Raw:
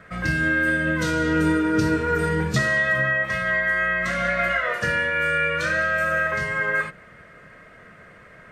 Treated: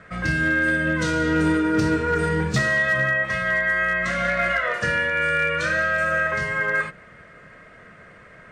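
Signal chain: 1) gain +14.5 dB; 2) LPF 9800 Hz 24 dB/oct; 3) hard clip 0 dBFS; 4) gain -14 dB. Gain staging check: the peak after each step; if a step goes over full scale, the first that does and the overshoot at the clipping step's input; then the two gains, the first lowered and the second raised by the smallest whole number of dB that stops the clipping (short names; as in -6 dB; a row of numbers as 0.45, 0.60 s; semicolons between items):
+5.0, +5.5, 0.0, -14.0 dBFS; step 1, 5.5 dB; step 1 +8.5 dB, step 4 -8 dB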